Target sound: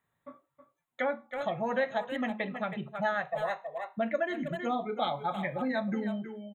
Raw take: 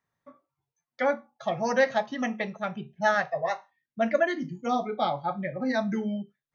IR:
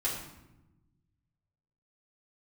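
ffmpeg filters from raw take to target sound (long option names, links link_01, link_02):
-filter_complex "[0:a]asettb=1/sr,asplit=3[link_01][link_02][link_03];[link_01]atrim=end=5.024[link_04];[link_02]atrim=start=5.02:end=5.68,asetpts=PTS-STARTPTS,afade=type=in:duration=0.004:curve=qsin,afade=type=out:start_time=0.656:duration=0.004:curve=qsin,highshelf=frequency=2100:gain=10[link_05];[link_03]atrim=start=5.676[link_06];[link_04][link_05]acrossfade=duration=0.004:curve1=hsin:curve2=qsin[link_07];[link_07][link_06]acrossfade=duration=0.004:curve1=qsin:curve2=hsin,asplit=2[link_08][link_09];[link_09]adelay=320,highpass=300,lowpass=3400,asoftclip=type=hard:threshold=-21dB,volume=-10dB[link_10];[link_08][link_10]amix=inputs=2:normalize=0,acompressor=threshold=-37dB:ratio=2,asuperstop=centerf=5200:order=20:qfactor=2.2,volume=3dB"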